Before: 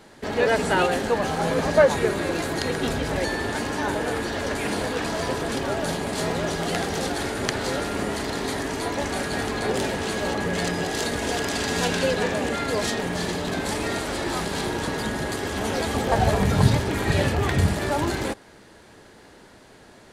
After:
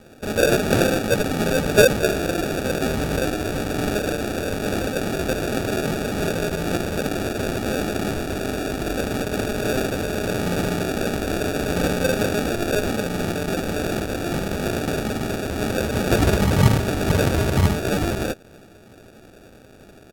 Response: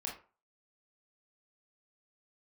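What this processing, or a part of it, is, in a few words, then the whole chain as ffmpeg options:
crushed at another speed: -af "asetrate=55125,aresample=44100,acrusher=samples=34:mix=1:aa=0.000001,asetrate=35280,aresample=44100,volume=2.5dB"

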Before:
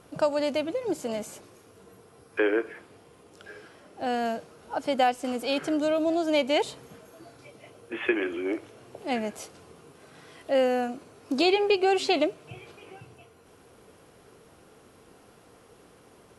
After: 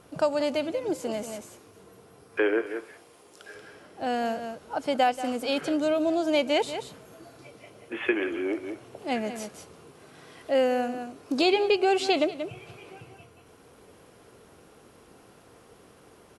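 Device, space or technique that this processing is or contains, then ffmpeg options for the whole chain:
ducked delay: -filter_complex "[0:a]asettb=1/sr,asplit=3[a][b][c];[a]atrim=end=2.664[d];[b]atrim=start=2.66:end=3.55,asetpts=PTS-STARTPTS,afade=t=in:d=0.004:c=qsin,afade=t=out:st=0.886:d=0.004:c=qsin,bass=f=250:g=-10,treble=f=4k:g=5[e];[c]atrim=start=3.546[f];[d][e]acrossfade=d=0.004:c1=hsin:c2=qsin[g];[g][f]acrossfade=d=0.004:c1=qsin:c2=hsin,asplit=3[h][i][j];[i]adelay=183,volume=-6dB[k];[j]apad=whole_len=730635[l];[k][l]sidechaincompress=threshold=-34dB:ratio=8:attack=16:release=210[m];[h][m]amix=inputs=2:normalize=0"

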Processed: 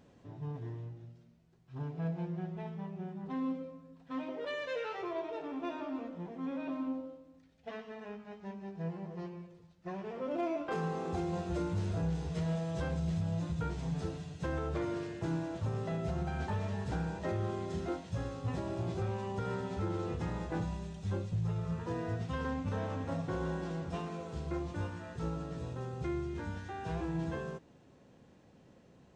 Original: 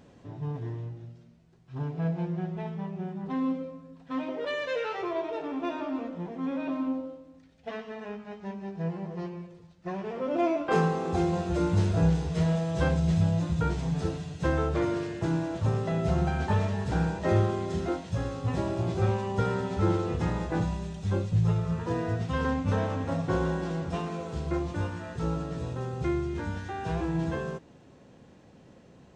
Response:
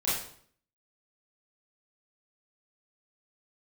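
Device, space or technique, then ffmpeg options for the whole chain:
limiter into clipper: -af "alimiter=limit=-19.5dB:level=0:latency=1:release=144,asoftclip=type=hard:threshold=-21dB,volume=-6.5dB"

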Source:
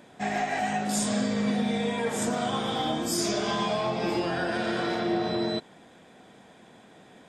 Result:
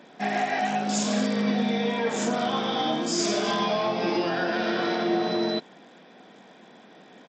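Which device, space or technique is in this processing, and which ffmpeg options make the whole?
Bluetooth headset: -filter_complex "[0:a]asettb=1/sr,asplit=3[a][b][c];[a]atrim=end=0.674[d];[b]atrim=start=0.67:end=1.13,asetpts=PTS-STARTPTS,afade=t=in:d=0.004:c=qsin,afade=t=out:st=0.456:d=0.004:c=qsin,bandreject=f=1.9k:w=8.4[e];[c]atrim=start=1.126[f];[d][e]acrossfade=d=0.004:c1=hsin:c2=qsin[g];[g][f]acrossfade=d=0.004:c1=qsin:c2=hsin,highpass=f=170:w=0.5412,highpass=f=170:w=1.3066,aresample=16000,aresample=44100,volume=2.5dB" -ar 32000 -c:a sbc -b:a 64k

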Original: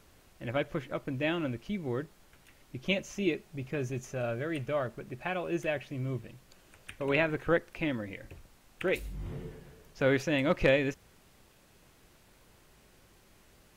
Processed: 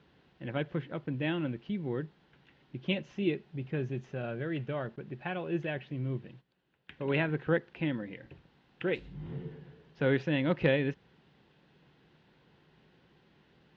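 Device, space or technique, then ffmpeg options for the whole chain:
guitar cabinet: -filter_complex "[0:a]highpass=97,equalizer=f=100:t=q:w=4:g=-8,equalizer=f=150:t=q:w=4:g=7,equalizer=f=620:t=q:w=4:g=-7,equalizer=f=1.2k:t=q:w=4:g=-7,equalizer=f=2.3k:t=q:w=4:g=-6,lowpass=f=3.6k:w=0.5412,lowpass=f=3.6k:w=1.3066,asettb=1/sr,asplit=3[a][b][c];[a]atrim=end=4.964[d];[b]atrim=start=4.96:end=6.92,asetpts=PTS-STARTPTS,afade=t=in:d=0.004:c=qsin,afade=t=out:st=1.956:d=0.004:c=qsin,agate=range=-14dB:threshold=-53dB:ratio=16:detection=peak[e];[c]atrim=start=6.916[f];[d][e]acrossfade=d=0.004:c1=hsin:c2=qsin[g];[g][f]acrossfade=d=0.004:c1=qsin:c2=hsin"

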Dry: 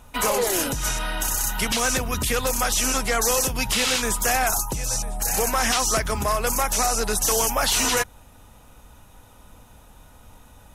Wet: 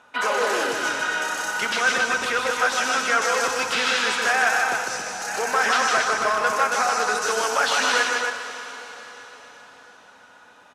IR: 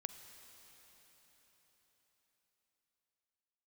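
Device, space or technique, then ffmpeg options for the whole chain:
station announcement: -filter_complex "[0:a]highpass=360,lowpass=4.8k,equalizer=f=1.5k:t=o:w=0.42:g=9.5,aecho=1:1:154.5|274.1:0.631|0.562[a];[1:a]atrim=start_sample=2205[b];[a][b]afir=irnorm=-1:irlink=0,volume=2dB"

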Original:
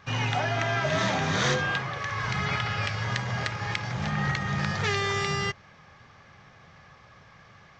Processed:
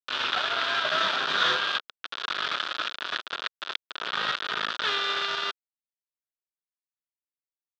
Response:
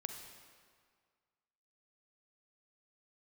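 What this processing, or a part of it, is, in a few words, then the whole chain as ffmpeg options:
hand-held game console: -af "acrusher=bits=3:mix=0:aa=0.000001,highpass=490,equalizer=f=500:t=q:w=4:g=-4,equalizer=f=800:t=q:w=4:g=-8,equalizer=f=1.4k:t=q:w=4:g=8,equalizer=f=2.1k:t=q:w=4:g=-8,equalizer=f=3.5k:t=q:w=4:g=7,lowpass=f=4.2k:w=0.5412,lowpass=f=4.2k:w=1.3066"

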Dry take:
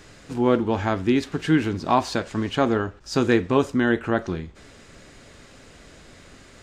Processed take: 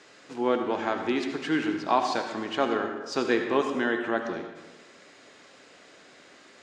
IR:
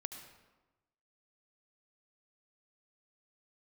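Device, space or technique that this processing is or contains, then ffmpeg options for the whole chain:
supermarket ceiling speaker: -filter_complex "[0:a]highpass=340,lowpass=6.8k[a];[1:a]atrim=start_sample=2205[b];[a][b]afir=irnorm=-1:irlink=0"

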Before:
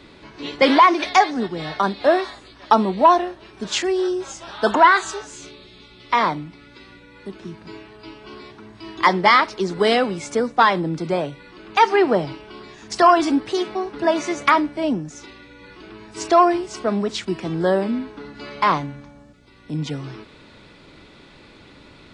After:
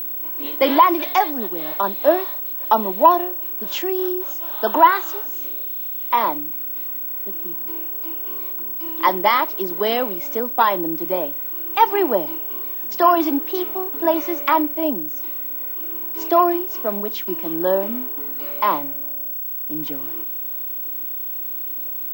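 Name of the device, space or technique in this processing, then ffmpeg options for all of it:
old television with a line whistle: -af "highpass=f=190:w=0.5412,highpass=f=190:w=1.3066,equalizer=f=320:t=q:w=4:g=8,equalizer=f=590:t=q:w=4:g=8,equalizer=f=960:t=q:w=4:g=8,equalizer=f=3k:t=q:w=4:g=5,equalizer=f=4.4k:t=q:w=4:g=-3,lowpass=f=6.9k:w=0.5412,lowpass=f=6.9k:w=1.3066,aeval=exprs='val(0)+0.126*sin(2*PI*15734*n/s)':c=same,volume=-6.5dB"

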